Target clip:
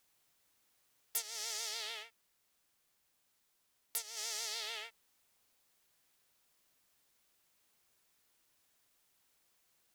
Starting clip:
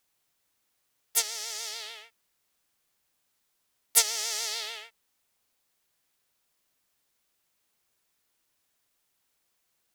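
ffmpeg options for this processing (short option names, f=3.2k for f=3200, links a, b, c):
-filter_complex "[0:a]acompressor=threshold=-36dB:ratio=12,asettb=1/sr,asplit=3[a][b][c];[a]atrim=end=2.034[d];[b]atrim=start=2.03:end=4.17,asetpts=PTS-STARTPTS,afade=t=in:d=0.004:c=qsin,afade=t=out:st=2.136:d=0.004:c=qsin,aeval=exprs='(tanh(2.24*val(0)+0.55)-tanh(0.55))/2.24':c=same[e];[c]atrim=start=4.166[f];[d][e]acrossfade=d=0.004:c1=hsin:c2=qsin[g];[g][f]acrossfade=d=0.004:c1=qsin:c2=hsin,volume=1dB"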